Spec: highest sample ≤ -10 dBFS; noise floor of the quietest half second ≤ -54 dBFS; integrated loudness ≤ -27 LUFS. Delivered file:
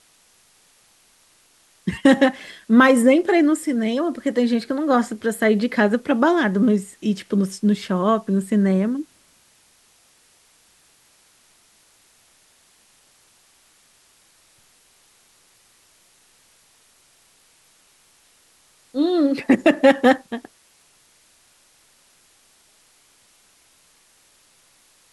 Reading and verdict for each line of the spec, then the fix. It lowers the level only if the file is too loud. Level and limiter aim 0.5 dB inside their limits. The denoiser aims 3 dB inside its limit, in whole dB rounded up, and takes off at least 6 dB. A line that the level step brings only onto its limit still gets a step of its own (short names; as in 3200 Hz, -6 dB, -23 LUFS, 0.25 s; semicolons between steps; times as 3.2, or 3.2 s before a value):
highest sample -3.5 dBFS: fail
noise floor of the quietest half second -57 dBFS: OK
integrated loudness -19.0 LUFS: fail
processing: gain -8.5 dB